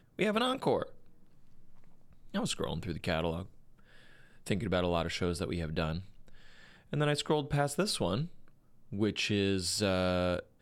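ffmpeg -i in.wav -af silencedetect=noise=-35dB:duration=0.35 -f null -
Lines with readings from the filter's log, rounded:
silence_start: 0.83
silence_end: 2.34 | silence_duration: 1.51
silence_start: 3.42
silence_end: 4.47 | silence_duration: 1.05
silence_start: 6.00
silence_end: 6.93 | silence_duration: 0.94
silence_start: 8.26
silence_end: 8.93 | silence_duration: 0.67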